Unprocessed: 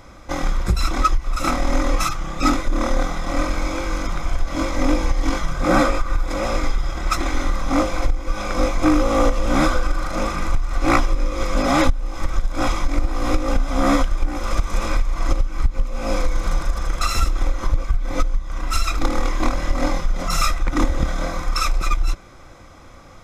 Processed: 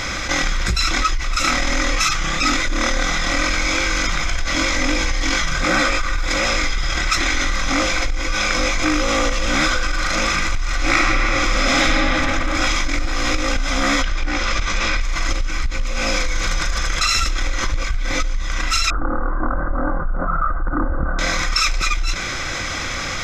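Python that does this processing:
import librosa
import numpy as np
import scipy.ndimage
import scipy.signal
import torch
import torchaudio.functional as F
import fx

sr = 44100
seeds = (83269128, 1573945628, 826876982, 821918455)

y = fx.reverb_throw(x, sr, start_s=10.77, length_s=1.26, rt60_s=2.7, drr_db=-3.5)
y = fx.lowpass(y, sr, hz=5500.0, slope=12, at=(14.02, 15.01))
y = fx.steep_lowpass(y, sr, hz=1500.0, slope=72, at=(18.9, 21.19))
y = fx.band_shelf(y, sr, hz=3300.0, db=13.0, octaves=2.6)
y = fx.env_flatten(y, sr, amount_pct=70)
y = F.gain(torch.from_numpy(y), -9.5).numpy()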